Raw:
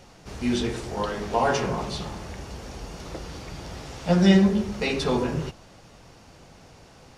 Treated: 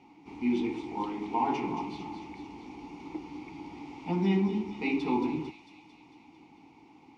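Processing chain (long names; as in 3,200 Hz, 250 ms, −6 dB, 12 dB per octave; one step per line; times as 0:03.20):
in parallel at −5 dB: gain into a clipping stage and back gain 19 dB
on the sum: formant filter u
delay with a high-pass on its return 224 ms, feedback 64%, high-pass 3,500 Hz, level −5.5 dB
level +4 dB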